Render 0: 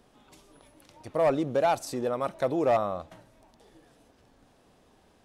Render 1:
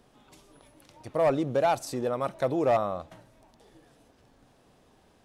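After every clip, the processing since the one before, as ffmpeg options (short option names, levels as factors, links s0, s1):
-af "equalizer=f=130:w=4.9:g=4"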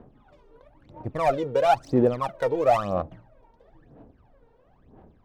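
-af "adynamicsmooth=sensitivity=6.5:basefreq=1400,aphaser=in_gain=1:out_gain=1:delay=2.2:decay=0.77:speed=1:type=sinusoidal"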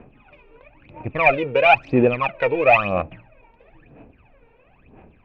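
-af "lowpass=f=2500:t=q:w=13,volume=1.5"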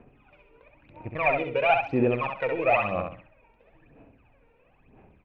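-filter_complex "[0:a]acrossover=split=3200[s0][s1];[s1]acompressor=threshold=0.0141:ratio=4:attack=1:release=60[s2];[s0][s2]amix=inputs=2:normalize=0,asplit=2[s3][s4];[s4]aecho=0:1:66|132|198|264:0.562|0.157|0.0441|0.0123[s5];[s3][s5]amix=inputs=2:normalize=0,volume=0.398"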